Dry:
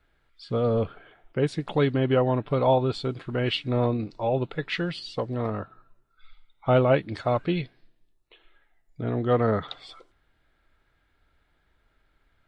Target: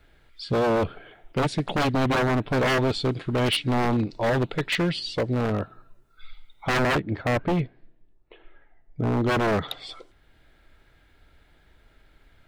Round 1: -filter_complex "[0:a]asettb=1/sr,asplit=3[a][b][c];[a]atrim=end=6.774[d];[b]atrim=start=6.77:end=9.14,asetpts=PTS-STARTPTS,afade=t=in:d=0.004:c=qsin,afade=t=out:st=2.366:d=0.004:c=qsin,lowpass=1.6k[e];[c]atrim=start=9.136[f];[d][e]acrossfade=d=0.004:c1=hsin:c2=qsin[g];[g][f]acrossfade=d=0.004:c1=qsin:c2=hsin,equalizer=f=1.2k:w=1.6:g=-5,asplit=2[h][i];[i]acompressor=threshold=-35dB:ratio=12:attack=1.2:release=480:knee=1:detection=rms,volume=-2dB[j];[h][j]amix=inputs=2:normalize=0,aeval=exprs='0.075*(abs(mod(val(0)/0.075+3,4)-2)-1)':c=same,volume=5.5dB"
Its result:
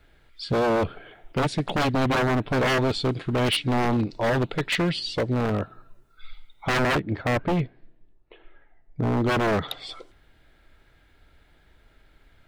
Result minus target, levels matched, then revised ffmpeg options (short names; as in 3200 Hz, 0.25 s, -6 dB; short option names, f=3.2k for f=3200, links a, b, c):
compressor: peak gain reduction -8.5 dB
-filter_complex "[0:a]asettb=1/sr,asplit=3[a][b][c];[a]atrim=end=6.774[d];[b]atrim=start=6.77:end=9.14,asetpts=PTS-STARTPTS,afade=t=in:d=0.004:c=qsin,afade=t=out:st=2.366:d=0.004:c=qsin,lowpass=1.6k[e];[c]atrim=start=9.136[f];[d][e]acrossfade=d=0.004:c1=hsin:c2=qsin[g];[g][f]acrossfade=d=0.004:c1=qsin:c2=hsin,equalizer=f=1.2k:w=1.6:g=-5,asplit=2[h][i];[i]acompressor=threshold=-44dB:ratio=12:attack=1.2:release=480:knee=1:detection=rms,volume=-2dB[j];[h][j]amix=inputs=2:normalize=0,aeval=exprs='0.075*(abs(mod(val(0)/0.075+3,4)-2)-1)':c=same,volume=5.5dB"